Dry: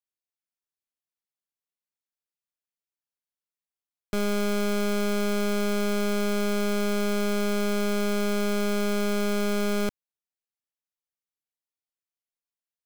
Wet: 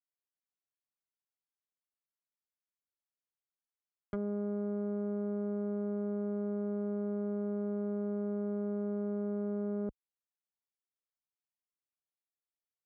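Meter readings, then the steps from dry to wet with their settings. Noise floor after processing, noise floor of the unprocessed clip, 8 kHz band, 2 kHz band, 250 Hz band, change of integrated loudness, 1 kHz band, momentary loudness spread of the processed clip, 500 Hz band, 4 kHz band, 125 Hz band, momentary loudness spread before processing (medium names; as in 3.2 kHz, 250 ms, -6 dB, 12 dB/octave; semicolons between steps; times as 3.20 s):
under -85 dBFS, under -85 dBFS, under -40 dB, -27.0 dB, -7.0 dB, -9.0 dB, -18.5 dB, 0 LU, -9.0 dB, under -40 dB, no reading, 0 LU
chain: high-pass 42 Hz; low-pass that closes with the level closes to 550 Hz, closed at -25.5 dBFS; Savitzky-Golay filter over 41 samples; trim -7 dB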